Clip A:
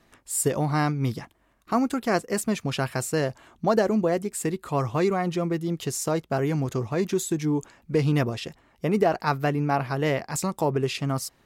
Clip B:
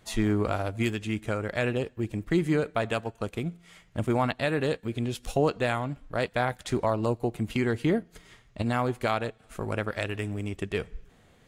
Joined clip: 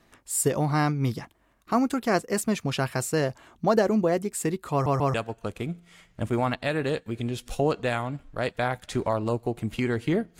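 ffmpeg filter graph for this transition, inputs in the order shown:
ffmpeg -i cue0.wav -i cue1.wav -filter_complex "[0:a]apad=whole_dur=10.39,atrim=end=10.39,asplit=3[link_01][link_02][link_03];[link_01]atrim=end=4.862[link_04];[link_02]atrim=start=4.718:end=4.862[link_05];[link_03]atrim=start=4.718:end=4.862[link_06];[1:a]atrim=start=2.908:end=8.16[link_07];[link_04][link_05]acrossfade=duration=0.004:curve1=hsin:curve2=hsin[link_08];[link_08][link_06]acrossfade=duration=0.004:curve1=hsin:curve2=hsin[link_09];[link_09][link_07]acrossfade=duration=0.004:curve1=hsin:curve2=hsin" out.wav

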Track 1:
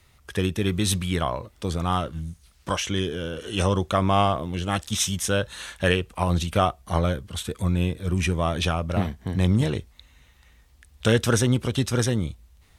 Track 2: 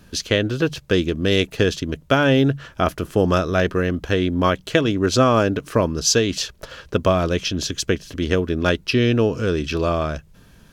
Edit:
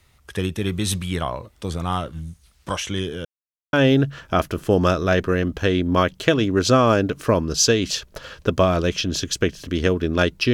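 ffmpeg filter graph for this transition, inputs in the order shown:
ffmpeg -i cue0.wav -i cue1.wav -filter_complex "[0:a]apad=whole_dur=10.53,atrim=end=10.53,asplit=2[link_01][link_02];[link_01]atrim=end=3.25,asetpts=PTS-STARTPTS,afade=type=out:start_time=3.246:duration=0.004:curve=hsin[link_03];[link_02]atrim=start=3.25:end=3.73,asetpts=PTS-STARTPTS,volume=0[link_04];[1:a]atrim=start=2.2:end=9,asetpts=PTS-STARTPTS,afade=type=in:duration=0.004:curve=hsin[link_05];[link_03][link_04][link_05]concat=n=3:v=0:a=1" out.wav

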